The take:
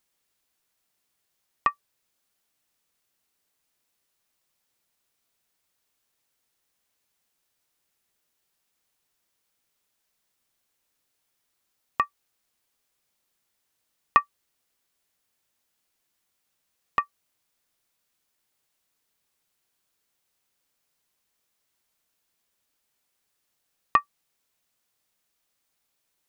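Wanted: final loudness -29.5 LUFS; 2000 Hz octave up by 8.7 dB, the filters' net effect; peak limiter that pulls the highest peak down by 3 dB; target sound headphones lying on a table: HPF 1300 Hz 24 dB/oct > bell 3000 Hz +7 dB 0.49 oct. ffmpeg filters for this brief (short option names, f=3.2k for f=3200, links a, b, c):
-af "equalizer=f=2k:t=o:g=8.5,alimiter=limit=-2dB:level=0:latency=1,highpass=f=1.3k:w=0.5412,highpass=f=1.3k:w=1.3066,equalizer=f=3k:t=o:w=0.49:g=7,volume=-2dB"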